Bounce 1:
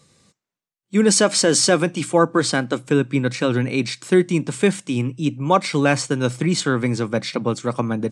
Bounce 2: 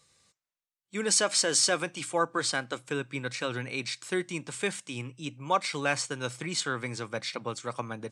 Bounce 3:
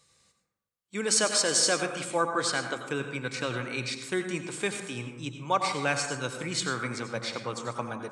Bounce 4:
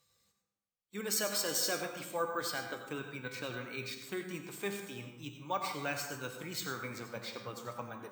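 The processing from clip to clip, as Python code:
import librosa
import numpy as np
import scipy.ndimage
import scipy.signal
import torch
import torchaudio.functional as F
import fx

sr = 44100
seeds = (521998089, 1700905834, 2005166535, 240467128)

y1 = fx.peak_eq(x, sr, hz=210.0, db=-13.0, octaves=2.5)
y1 = y1 * librosa.db_to_amplitude(-6.0)
y2 = fx.rev_plate(y1, sr, seeds[0], rt60_s=1.0, hf_ratio=0.35, predelay_ms=75, drr_db=5.5)
y3 = fx.spec_quant(y2, sr, step_db=15)
y3 = fx.comb_fb(y3, sr, f0_hz=100.0, decay_s=0.63, harmonics='all', damping=0.0, mix_pct=70)
y3 = np.repeat(y3[::2], 2)[:len(y3)]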